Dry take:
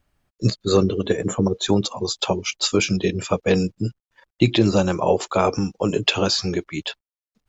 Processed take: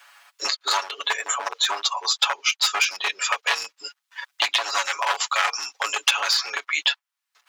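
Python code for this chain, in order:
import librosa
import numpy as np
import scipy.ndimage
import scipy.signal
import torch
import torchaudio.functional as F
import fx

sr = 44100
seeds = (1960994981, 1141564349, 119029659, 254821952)

p1 = np.minimum(x, 2.0 * 10.0 ** (-16.0 / 20.0) - x)
p2 = fx.rider(p1, sr, range_db=10, speed_s=0.5)
p3 = p1 + (p2 * librosa.db_to_amplitude(1.5))
p4 = scipy.signal.sosfilt(scipy.signal.butter(4, 970.0, 'highpass', fs=sr, output='sos'), p3)
p5 = fx.high_shelf(p4, sr, hz=6000.0, db=-7.0)
p6 = p5 + 0.76 * np.pad(p5, (int(7.1 * sr / 1000.0), 0))[:len(p5)]
p7 = fx.band_squash(p6, sr, depth_pct=70)
y = p7 * librosa.db_to_amplitude(-2.0)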